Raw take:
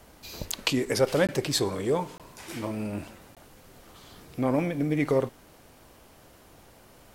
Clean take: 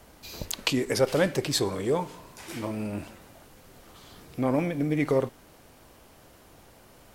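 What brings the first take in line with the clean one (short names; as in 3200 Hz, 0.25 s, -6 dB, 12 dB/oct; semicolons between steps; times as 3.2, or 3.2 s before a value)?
interpolate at 1.27/2.18/3.35, 17 ms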